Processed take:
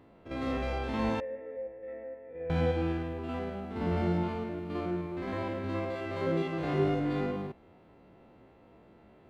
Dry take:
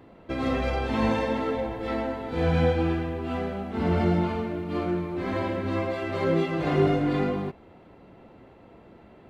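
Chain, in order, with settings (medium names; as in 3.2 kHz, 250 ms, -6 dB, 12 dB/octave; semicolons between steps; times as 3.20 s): spectrogram pixelated in time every 50 ms; 1.20–2.50 s: cascade formant filter e; trim -5.5 dB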